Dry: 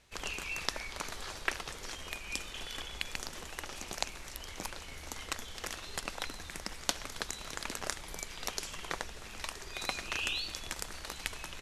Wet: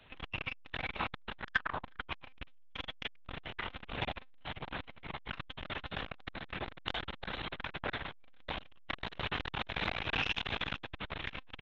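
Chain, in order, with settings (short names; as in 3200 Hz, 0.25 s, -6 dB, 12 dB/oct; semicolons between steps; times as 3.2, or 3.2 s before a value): 1.39–1.83 synth low-pass 1900 Hz -> 830 Hz, resonance Q 5.5; chorus voices 4, 0.21 Hz, delay 26 ms, depth 4.8 ms; 8.9–10.78 requantised 6-bit, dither triangular; tapped delay 59/110/166/190/446/467 ms -7/-15.5/-19.5/-17.5/-11/-17.5 dB; monotone LPC vocoder at 8 kHz 260 Hz; core saturation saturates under 2000 Hz; gain +9 dB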